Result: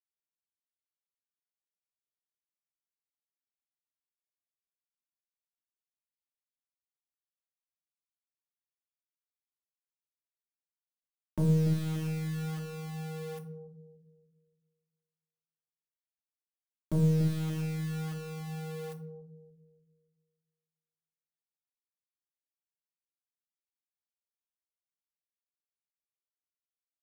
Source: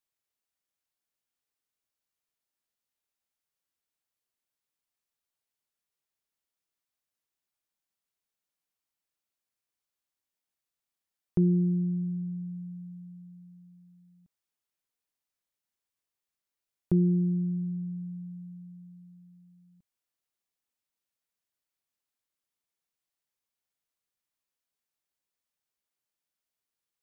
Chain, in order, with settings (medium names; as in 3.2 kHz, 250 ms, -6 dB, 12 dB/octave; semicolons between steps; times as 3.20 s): high-pass 130 Hz 12 dB/octave; in parallel at -1 dB: compression 5:1, threshold -40 dBFS, peak gain reduction 17 dB; on the sum: hard clipper -20.5 dBFS, distortion -17 dB; pitch shift -2 st; saturation -25 dBFS, distortion -15 dB; bit crusher 7-bit; bucket-brigade echo 288 ms, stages 1024, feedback 36%, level -7 dB; on a send at -3 dB: reverberation RT60 0.40 s, pre-delay 3 ms; on the sum: trim -2 dB